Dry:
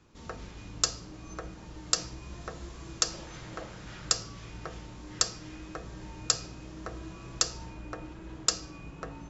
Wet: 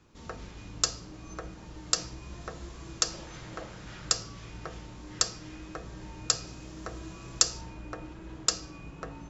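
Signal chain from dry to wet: 6.47–7.61 high shelf 6100 Hz +9 dB

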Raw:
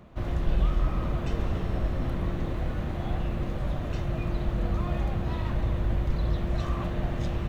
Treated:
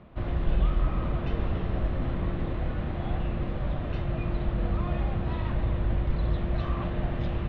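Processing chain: LPF 3800 Hz 24 dB/oct

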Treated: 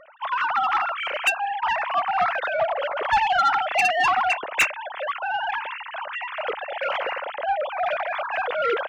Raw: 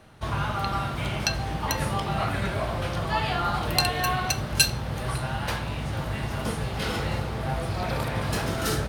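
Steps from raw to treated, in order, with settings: sine-wave speech; soft clip -19 dBFS, distortion -12 dB; gain +5 dB

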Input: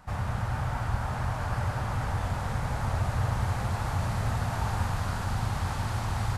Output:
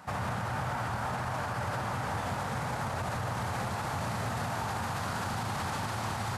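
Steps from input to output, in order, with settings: HPF 160 Hz 12 dB/oct; limiter -30 dBFS, peak gain reduction 9 dB; gain +5 dB

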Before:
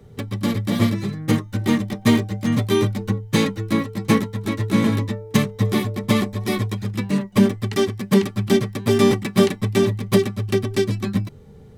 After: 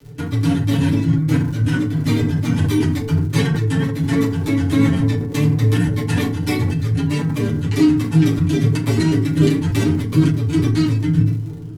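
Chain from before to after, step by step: trilling pitch shifter -3.5 st, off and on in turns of 0.147 s; bell 470 Hz -3.5 dB 2.1 oct; comb 7.2 ms, depth 73%; limiter -13 dBFS, peak gain reduction 10 dB; rotary speaker horn 8 Hz, later 1.1 Hz, at 6.31; crackle 65/s -38 dBFS; vibrato 0.98 Hz 25 cents; on a send: dark delay 0.464 s, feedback 70%, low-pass 750 Hz, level -19.5 dB; on the sum: FDN reverb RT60 0.45 s, low-frequency decay 1.3×, high-frequency decay 0.55×, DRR -4 dB; sustainer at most 54 dB/s; gain -1 dB

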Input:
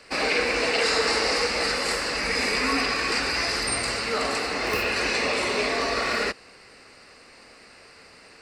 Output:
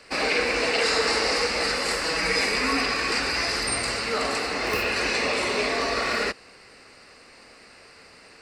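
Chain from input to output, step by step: 2.03–2.46 comb 6.2 ms, depth 69%

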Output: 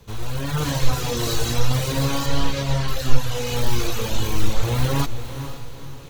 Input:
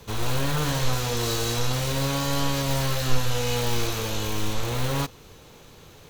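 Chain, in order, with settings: reverb removal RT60 1.6 s; 2.26–2.88 LPF 5600 Hz 12 dB/oct; diffused feedback echo 0.484 s, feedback 41%, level -10.5 dB; AGC gain up to 11 dB; low shelf 170 Hz +7.5 dB; gain -6 dB

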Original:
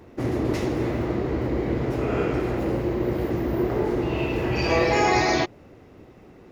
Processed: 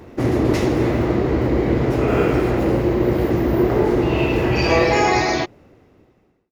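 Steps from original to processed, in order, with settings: ending faded out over 2.17 s; 2.08–2.5 requantised 10-bit, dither triangular; gain +7 dB

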